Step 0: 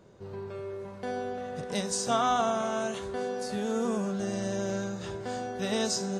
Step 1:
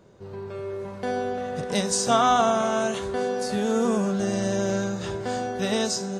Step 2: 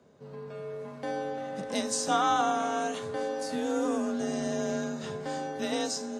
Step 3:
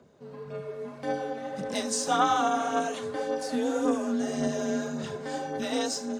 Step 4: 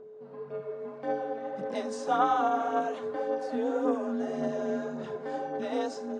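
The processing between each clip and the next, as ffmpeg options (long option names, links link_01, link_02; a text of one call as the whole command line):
ffmpeg -i in.wav -af "dynaudnorm=framelen=130:gausssize=9:maxgain=4.5dB,volume=2dB" out.wav
ffmpeg -i in.wav -af "afreqshift=43,volume=-6dB" out.wav
ffmpeg -i in.wav -af "aphaser=in_gain=1:out_gain=1:delay=4.5:decay=0.45:speed=1.8:type=sinusoidal" out.wav
ffmpeg -i in.wav -af "bandpass=frequency=600:width_type=q:width=0.59:csg=0,aeval=exprs='val(0)+0.00562*sin(2*PI*430*n/s)':channel_layout=same" out.wav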